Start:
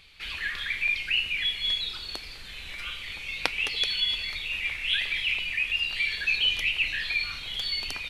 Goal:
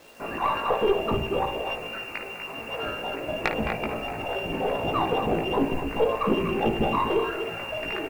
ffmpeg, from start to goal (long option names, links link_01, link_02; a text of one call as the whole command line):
ffmpeg -i in.wav -filter_complex "[0:a]lowshelf=frequency=220:gain=-3.5,lowpass=frequency=2400:width_type=q:width=0.5098,lowpass=frequency=2400:width_type=q:width=0.6013,lowpass=frequency=2400:width_type=q:width=0.9,lowpass=frequency=2400:width_type=q:width=2.563,afreqshift=-2800,acrusher=bits=9:mix=0:aa=0.000001,asplit=2[link_01][link_02];[link_02]adelay=18,volume=-3dB[link_03];[link_01][link_03]amix=inputs=2:normalize=0,asplit=2[link_04][link_05];[link_05]aecho=0:1:54|245:0.282|0.355[link_06];[link_04][link_06]amix=inputs=2:normalize=0,aeval=exprs='(tanh(8.91*val(0)+0.45)-tanh(0.45))/8.91':channel_layout=same,volume=8dB" out.wav